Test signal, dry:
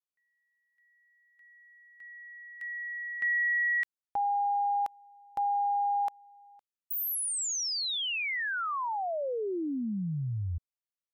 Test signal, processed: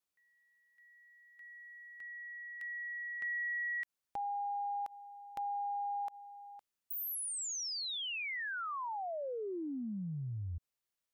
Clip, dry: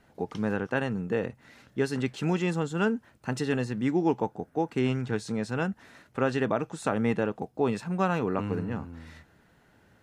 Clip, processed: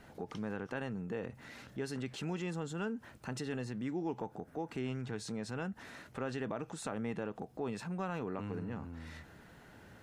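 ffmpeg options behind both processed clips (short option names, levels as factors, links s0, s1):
-af "acompressor=threshold=0.002:ratio=2:attack=3:release=40:detection=rms,volume=1.78"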